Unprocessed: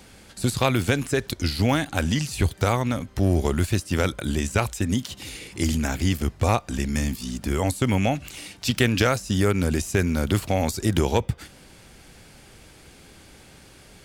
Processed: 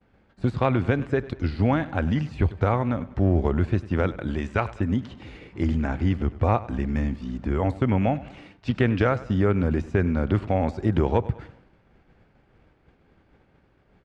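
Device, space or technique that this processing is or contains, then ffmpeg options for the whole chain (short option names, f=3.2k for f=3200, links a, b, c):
hearing-loss simulation: -filter_complex "[0:a]lowpass=11k,asettb=1/sr,asplit=3[a][b][c];[a]atrim=end=4.274[d];[b]atrim=start=4.27:end=4.74,asetpts=PTS-STARTPTS,afade=t=in:d=0.004:c=qsin,afade=t=out:st=0.466:d=0.004:c=qsin,tiltshelf=f=750:g=-3.5[e];[c]atrim=start=4.736[f];[d][e]acrossfade=d=0.004:c1=hsin:c2=qsin[g];[g][f]acrossfade=d=0.004:c1=qsin:c2=hsin,lowpass=1.6k,aecho=1:1:99|198|297|396:0.126|0.0579|0.0266|0.0123,agate=range=-33dB:threshold=-42dB:ratio=3:detection=peak"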